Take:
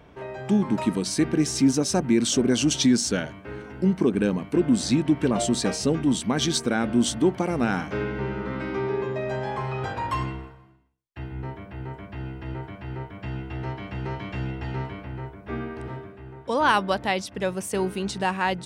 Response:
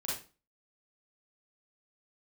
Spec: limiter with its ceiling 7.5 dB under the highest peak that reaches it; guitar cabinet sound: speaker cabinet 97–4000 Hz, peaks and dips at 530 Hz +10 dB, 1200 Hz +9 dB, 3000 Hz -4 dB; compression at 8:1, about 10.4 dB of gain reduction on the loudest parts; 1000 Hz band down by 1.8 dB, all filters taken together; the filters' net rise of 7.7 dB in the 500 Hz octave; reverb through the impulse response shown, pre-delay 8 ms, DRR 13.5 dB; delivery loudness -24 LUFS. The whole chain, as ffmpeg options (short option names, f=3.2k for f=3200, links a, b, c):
-filter_complex "[0:a]equalizer=f=500:t=o:g=6,equalizer=f=1k:t=o:g=-9,acompressor=threshold=-25dB:ratio=8,alimiter=limit=-22.5dB:level=0:latency=1,asplit=2[a][b];[1:a]atrim=start_sample=2205,adelay=8[c];[b][c]afir=irnorm=-1:irlink=0,volume=-16dB[d];[a][d]amix=inputs=2:normalize=0,highpass=97,equalizer=f=530:t=q:w=4:g=10,equalizer=f=1.2k:t=q:w=4:g=9,equalizer=f=3k:t=q:w=4:g=-4,lowpass=f=4k:w=0.5412,lowpass=f=4k:w=1.3066,volume=7dB"